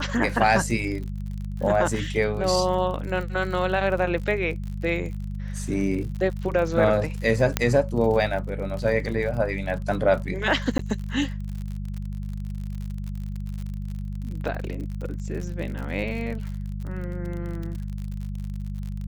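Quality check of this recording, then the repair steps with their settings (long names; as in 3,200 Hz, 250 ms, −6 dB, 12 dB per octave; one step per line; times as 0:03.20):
surface crackle 52 per second −32 dBFS
mains hum 50 Hz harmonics 4 −31 dBFS
0:07.57: click −4 dBFS
0:10.78–0:10.79: drop-out 13 ms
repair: click removal
hum removal 50 Hz, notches 4
repair the gap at 0:10.78, 13 ms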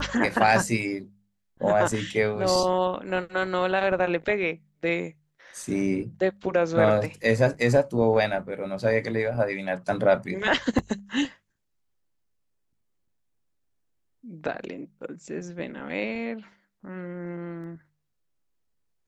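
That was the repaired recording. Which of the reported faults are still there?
none of them is left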